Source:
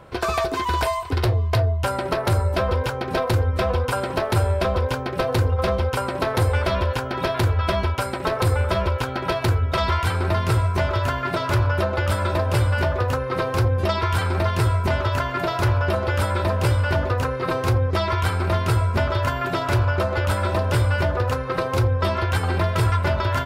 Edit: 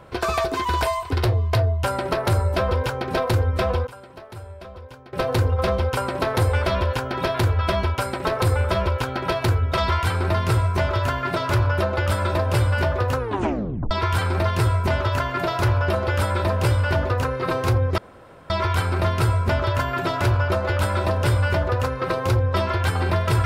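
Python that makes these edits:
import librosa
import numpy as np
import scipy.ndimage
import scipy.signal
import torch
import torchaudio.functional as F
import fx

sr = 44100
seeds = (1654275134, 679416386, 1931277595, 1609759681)

y = fx.edit(x, sr, fx.fade_down_up(start_s=3.57, length_s=1.86, db=-18.0, fade_s=0.3, curve='log'),
    fx.tape_stop(start_s=13.18, length_s=0.73),
    fx.insert_room_tone(at_s=17.98, length_s=0.52), tone=tone)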